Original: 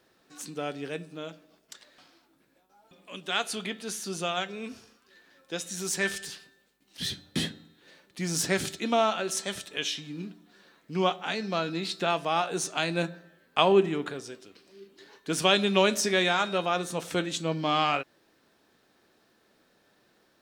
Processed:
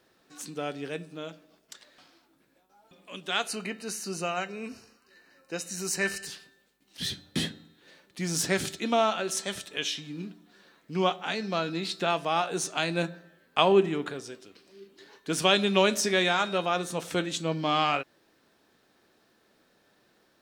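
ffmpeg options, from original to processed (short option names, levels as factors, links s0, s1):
-filter_complex "[0:a]asettb=1/sr,asplit=3[s0][s1][s2];[s0]atrim=end=3.484[s3];[s1]atrim=start=3.48:end=6.27,asetpts=PTS-STARTPTS,afade=t=in:d=0.004:c=qsin,afade=t=out:st=2.786:d=0.004:c=qsin,asuperstop=centerf=3400:order=12:qfactor=5[s4];[s2]atrim=start=6.266[s5];[s3][s4]acrossfade=d=0.004:c1=hsin:c2=qsin[s6];[s6][s5]acrossfade=d=0.004:c1=qsin:c2=hsin"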